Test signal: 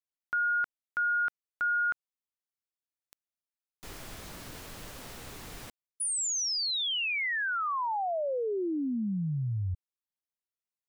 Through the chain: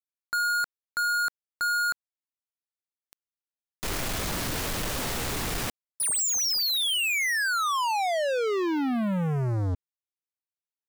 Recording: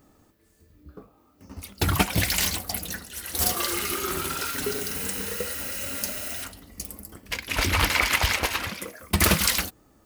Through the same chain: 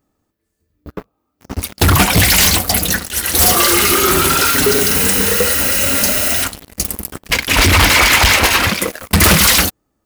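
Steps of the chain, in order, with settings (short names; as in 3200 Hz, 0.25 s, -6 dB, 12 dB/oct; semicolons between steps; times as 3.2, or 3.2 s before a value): sample leveller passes 5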